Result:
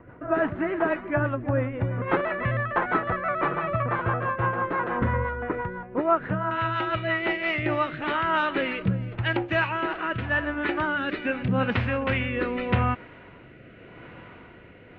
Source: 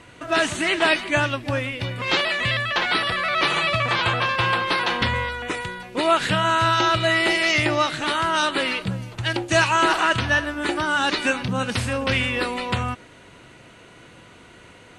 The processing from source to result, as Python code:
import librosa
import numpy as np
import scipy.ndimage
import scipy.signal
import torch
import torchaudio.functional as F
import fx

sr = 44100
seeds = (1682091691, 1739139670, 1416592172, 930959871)

y = fx.lowpass(x, sr, hz=fx.steps((0.0, 1500.0), (6.51, 2500.0)), slope=24)
y = fx.rider(y, sr, range_db=4, speed_s=0.5)
y = fx.rotary_switch(y, sr, hz=6.0, then_hz=0.85, switch_at_s=7.21)